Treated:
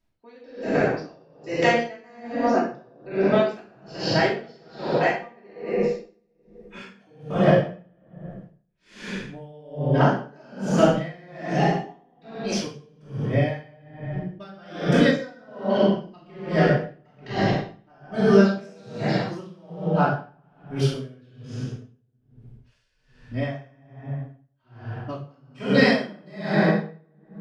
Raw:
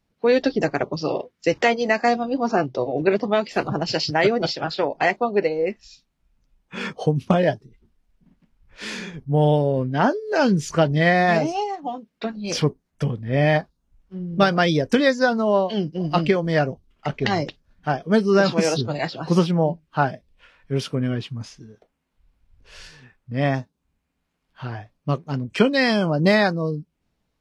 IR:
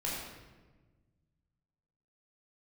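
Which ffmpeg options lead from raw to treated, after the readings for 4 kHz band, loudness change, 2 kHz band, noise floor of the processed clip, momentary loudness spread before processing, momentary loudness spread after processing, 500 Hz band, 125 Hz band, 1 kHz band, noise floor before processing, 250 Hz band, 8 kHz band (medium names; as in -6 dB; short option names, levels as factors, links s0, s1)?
-5.0 dB, -2.0 dB, -4.0 dB, -65 dBFS, 14 LU, 21 LU, -3.0 dB, -2.0 dB, -4.0 dB, -75 dBFS, -2.0 dB, -5.5 dB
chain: -filter_complex "[1:a]atrim=start_sample=2205,asetrate=29547,aresample=44100[s0];[0:a][s0]afir=irnorm=-1:irlink=0,aeval=exprs='val(0)*pow(10,-32*(0.5-0.5*cos(2*PI*1.2*n/s))/20)':c=same,volume=0.596"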